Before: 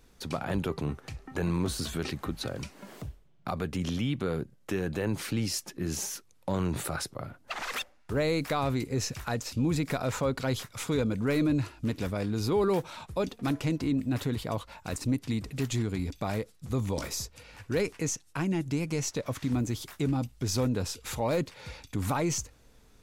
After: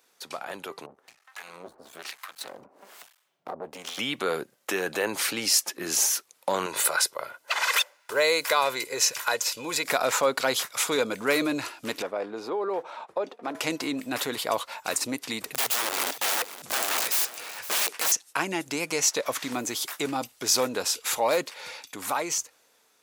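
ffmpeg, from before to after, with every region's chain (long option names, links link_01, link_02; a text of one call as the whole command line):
ffmpeg -i in.wav -filter_complex "[0:a]asettb=1/sr,asplit=3[link_01][link_02][link_03];[link_01]atrim=end=0.864[link_04];[link_02]atrim=start=0.86:end=3.98,asetpts=PTS-STARTPTS,afade=type=in:duration=0.004:curve=qsin,afade=type=out:start_time=3.116:duration=0.004:curve=qsin,aeval=exprs='max(val(0),0)':channel_layout=same,acrossover=split=910[link_05][link_06];[link_05]aeval=exprs='val(0)*(1-1/2+1/2*cos(2*PI*1.1*n/s))':channel_layout=same[link_07];[link_06]aeval=exprs='val(0)*(1-1/2-1/2*cos(2*PI*1.1*n/s))':channel_layout=same[link_08];[link_07][link_08]amix=inputs=2:normalize=0[link_09];[link_03]atrim=start=3.976[link_10];[link_04][link_09]acrossfade=duration=0.004:curve1=hsin:curve2=qsin[link_11];[link_11][link_10]acrossfade=duration=0.004:curve1=qsin:curve2=hsin,asettb=1/sr,asplit=3[link_12][link_13][link_14];[link_12]atrim=end=6.664[link_15];[link_13]atrim=start=6.66:end=9.85,asetpts=PTS-STARTPTS,afade=type=in:duration=0.004:curve=qsin,afade=type=out:start_time=3.186:duration=0.004:curve=qsin,lowshelf=frequency=480:gain=-7.5,bandreject=frequency=50:width_type=h:width=6,bandreject=frequency=100:width_type=h:width=6,aecho=1:1:2:0.47,atrim=end_sample=140679[link_16];[link_14]atrim=start=9.846[link_17];[link_15][link_16]acrossfade=duration=0.004:curve1=hsin:curve2=qsin[link_18];[link_18][link_17]acrossfade=duration=0.004:curve1=qsin:curve2=hsin,asettb=1/sr,asplit=3[link_19][link_20][link_21];[link_19]atrim=end=12.024[link_22];[link_20]atrim=start=12.02:end=13.55,asetpts=PTS-STARTPTS,afade=type=in:duration=0.004:curve=qsin,afade=type=out:start_time=1.526:duration=0.004:curve=qsin,bandpass=frequency=530:width_type=q:width=0.84,acompressor=threshold=-29dB:ratio=5:attack=3.2:release=140:knee=1:detection=peak[link_23];[link_21]atrim=start=13.546[link_24];[link_22][link_23]acrossfade=duration=0.004:curve1=hsin:curve2=qsin[link_25];[link_25][link_24]acrossfade=duration=0.004:curve1=qsin:curve2=hsin,asettb=1/sr,asplit=3[link_26][link_27][link_28];[link_26]atrim=end=15.424[link_29];[link_27]atrim=start=15.42:end=18.12,asetpts=PTS-STARTPTS,afade=type=in:duration=0.004:curve=qsin,afade=type=out:start_time=2.696:duration=0.004:curve=qsin,aeval=exprs='(mod(37.6*val(0)+1,2)-1)/37.6':channel_layout=same,aecho=1:1:513:0.188,atrim=end_sample=119070[link_30];[link_28]atrim=start=18.116[link_31];[link_29][link_30]acrossfade=duration=0.004:curve1=hsin:curve2=qsin[link_32];[link_32][link_31]acrossfade=duration=0.004:curve1=qsin:curve2=hsin,highpass=580,highshelf=frequency=8300:gain=5,dynaudnorm=framelen=890:gausssize=5:maxgain=10dB" out.wav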